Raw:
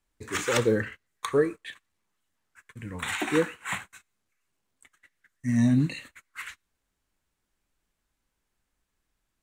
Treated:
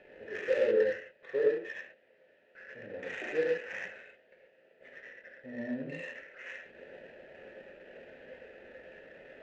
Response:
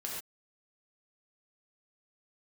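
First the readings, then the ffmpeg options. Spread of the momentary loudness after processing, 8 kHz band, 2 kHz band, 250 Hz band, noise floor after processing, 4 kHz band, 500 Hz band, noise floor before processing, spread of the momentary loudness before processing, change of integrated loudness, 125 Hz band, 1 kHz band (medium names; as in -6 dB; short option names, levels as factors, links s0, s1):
22 LU, under -25 dB, -5.0 dB, -15.0 dB, -66 dBFS, -14.0 dB, -1.0 dB, -81 dBFS, 19 LU, -6.5 dB, -23.5 dB, -15.5 dB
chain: -filter_complex "[0:a]aeval=exprs='val(0)+0.5*0.0447*sgn(val(0))':c=same,asplit=3[s0][s1][s2];[s0]bandpass=f=530:t=q:w=8,volume=1[s3];[s1]bandpass=f=1840:t=q:w=8,volume=0.501[s4];[s2]bandpass=f=2480:t=q:w=8,volume=0.355[s5];[s3][s4][s5]amix=inputs=3:normalize=0[s6];[1:a]atrim=start_sample=2205[s7];[s6][s7]afir=irnorm=-1:irlink=0,adynamicsmooth=sensitivity=3:basefreq=1500,volume=1.26"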